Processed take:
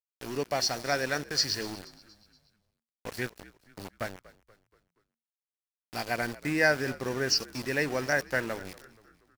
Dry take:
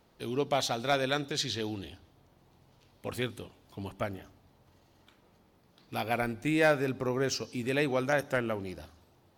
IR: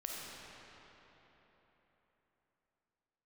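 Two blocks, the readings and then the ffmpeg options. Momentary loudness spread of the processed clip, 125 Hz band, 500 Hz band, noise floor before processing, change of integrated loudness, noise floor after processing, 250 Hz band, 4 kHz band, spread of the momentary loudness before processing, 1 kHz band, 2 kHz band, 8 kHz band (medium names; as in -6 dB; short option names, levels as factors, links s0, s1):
15 LU, -2.5 dB, -1.5 dB, -65 dBFS, +1.5 dB, under -85 dBFS, -2.0 dB, +4.5 dB, 17 LU, -1.5 dB, +4.0 dB, +6.0 dB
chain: -filter_complex "[0:a]superequalizer=11b=2.24:13b=0.316:14b=3.98,aeval=exprs='val(0)*gte(abs(val(0)),0.0178)':c=same,asplit=5[s0][s1][s2][s3][s4];[s1]adelay=238,afreqshift=-58,volume=0.1[s5];[s2]adelay=476,afreqshift=-116,volume=0.049[s6];[s3]adelay=714,afreqshift=-174,volume=0.024[s7];[s4]adelay=952,afreqshift=-232,volume=0.0117[s8];[s0][s5][s6][s7][s8]amix=inputs=5:normalize=0,volume=0.841"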